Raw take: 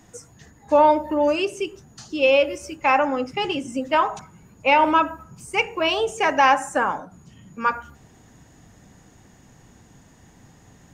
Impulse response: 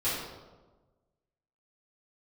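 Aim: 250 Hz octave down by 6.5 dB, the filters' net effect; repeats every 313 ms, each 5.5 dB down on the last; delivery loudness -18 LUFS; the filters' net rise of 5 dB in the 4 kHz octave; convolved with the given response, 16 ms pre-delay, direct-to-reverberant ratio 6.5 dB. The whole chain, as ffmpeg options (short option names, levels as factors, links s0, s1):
-filter_complex "[0:a]equalizer=f=250:t=o:g=-8.5,equalizer=f=4000:t=o:g=8.5,aecho=1:1:313|626|939|1252|1565|1878|2191:0.531|0.281|0.149|0.079|0.0419|0.0222|0.0118,asplit=2[s0][s1];[1:a]atrim=start_sample=2205,adelay=16[s2];[s1][s2]afir=irnorm=-1:irlink=0,volume=0.168[s3];[s0][s3]amix=inputs=2:normalize=0,volume=1.12"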